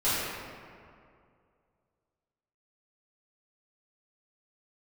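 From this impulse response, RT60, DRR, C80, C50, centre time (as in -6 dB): 2.3 s, -14.0 dB, -1.0 dB, -3.5 dB, 0.144 s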